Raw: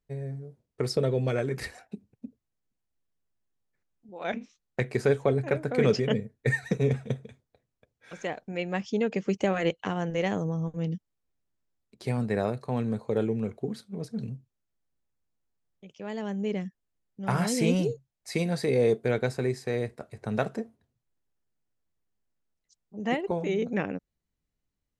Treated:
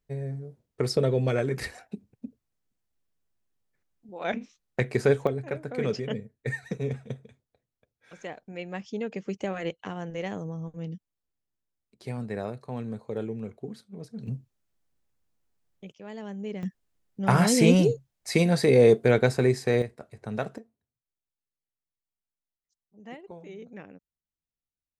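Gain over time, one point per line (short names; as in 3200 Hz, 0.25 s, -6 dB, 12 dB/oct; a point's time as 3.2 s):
+2 dB
from 5.27 s -5.5 dB
from 14.27 s +5 dB
from 15.92 s -5 dB
from 16.63 s +6 dB
from 19.82 s -3 dB
from 20.58 s -15 dB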